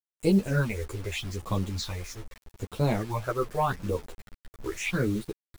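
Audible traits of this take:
phaser sweep stages 6, 0.81 Hz, lowest notch 190–1,800 Hz
a quantiser's noise floor 8 bits, dither none
a shimmering, thickened sound

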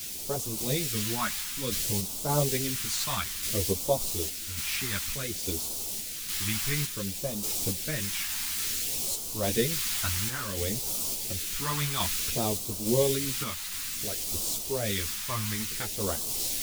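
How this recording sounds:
a quantiser's noise floor 6 bits, dither triangular
phaser sweep stages 2, 0.57 Hz, lowest notch 470–1,700 Hz
sample-and-hold tremolo
a shimmering, thickened sound

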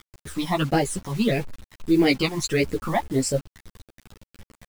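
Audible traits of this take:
phaser sweep stages 12, 1.6 Hz, lowest notch 450–1,200 Hz
a quantiser's noise floor 8 bits, dither none
a shimmering, thickened sound

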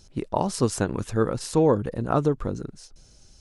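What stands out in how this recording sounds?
background noise floor −54 dBFS
spectral slope −6.0 dB per octave

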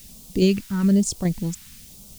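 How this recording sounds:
tremolo saw down 2.4 Hz, depth 40%
a quantiser's noise floor 8 bits, dither triangular
phaser sweep stages 2, 1.1 Hz, lowest notch 530–1,700 Hz

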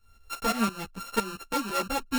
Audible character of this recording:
a buzz of ramps at a fixed pitch in blocks of 32 samples
tremolo saw up 5.9 Hz, depth 80%
a shimmering, thickened sound

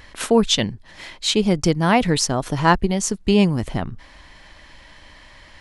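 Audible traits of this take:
background noise floor −47 dBFS
spectral slope −4.5 dB per octave

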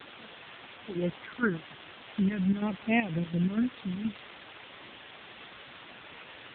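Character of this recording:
phaser sweep stages 6, 0.42 Hz, lowest notch 550–1,200 Hz
chopped level 4.2 Hz, depth 65%, duty 60%
a quantiser's noise floor 6 bits, dither triangular
AMR narrowband

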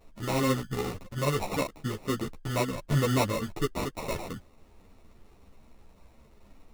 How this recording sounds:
aliases and images of a low sample rate 1,600 Hz, jitter 0%
a shimmering, thickened sound

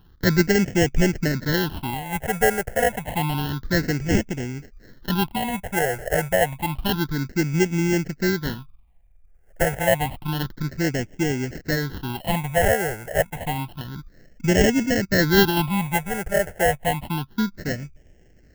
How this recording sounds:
aliases and images of a low sample rate 1,200 Hz, jitter 0%
phaser sweep stages 6, 0.29 Hz, lowest notch 270–1,100 Hz

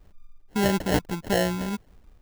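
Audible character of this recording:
phaser sweep stages 4, 1.7 Hz, lowest notch 440–1,600 Hz
aliases and images of a low sample rate 1,200 Hz, jitter 0%

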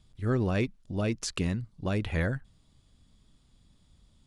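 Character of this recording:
background noise floor −65 dBFS
spectral slope −6.0 dB per octave

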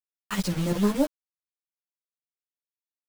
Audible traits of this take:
chopped level 5.3 Hz, depth 65%, duty 80%
a quantiser's noise floor 6 bits, dither none
a shimmering, thickened sound

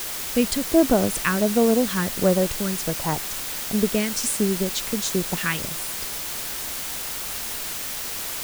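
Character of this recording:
phaser sweep stages 2, 1.4 Hz, lowest notch 660–2,900 Hz
a quantiser's noise floor 6 bits, dither triangular

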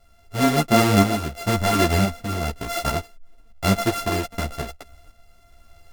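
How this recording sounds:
a buzz of ramps at a fixed pitch in blocks of 64 samples
tremolo saw up 0.98 Hz, depth 55%
a shimmering, thickened sound

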